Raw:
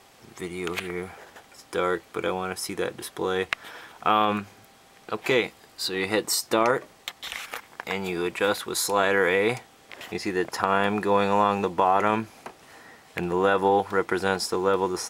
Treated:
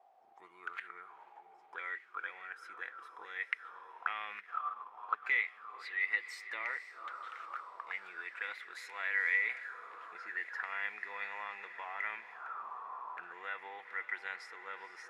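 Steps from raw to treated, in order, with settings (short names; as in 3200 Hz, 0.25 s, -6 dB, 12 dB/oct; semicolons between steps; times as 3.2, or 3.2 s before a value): low shelf 280 Hz -10.5 dB; diffused feedback echo 0.496 s, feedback 74%, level -13.5 dB; auto-wah 700–2000 Hz, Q 9.1, up, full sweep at -25.5 dBFS; 4.37–5.3 transient shaper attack +6 dB, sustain -6 dB; gain +1 dB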